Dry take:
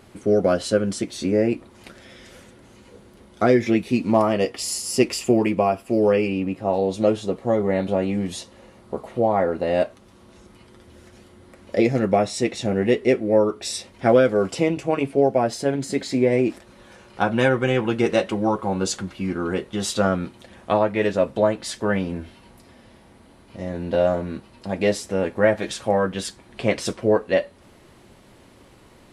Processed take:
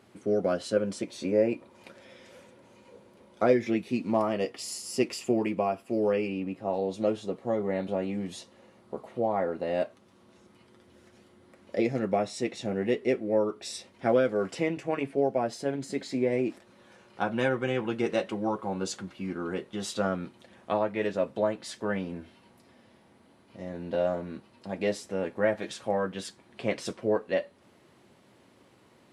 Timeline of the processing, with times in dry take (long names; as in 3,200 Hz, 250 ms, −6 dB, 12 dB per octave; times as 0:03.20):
0:00.76–0:03.53: hollow resonant body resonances 550/930/2,400 Hz, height 8 dB, ringing for 25 ms
0:14.39–0:15.15: parametric band 1,800 Hz +8 dB 0.46 octaves
whole clip: high-pass filter 120 Hz 12 dB per octave; high-shelf EQ 7,400 Hz −4.5 dB; level −8 dB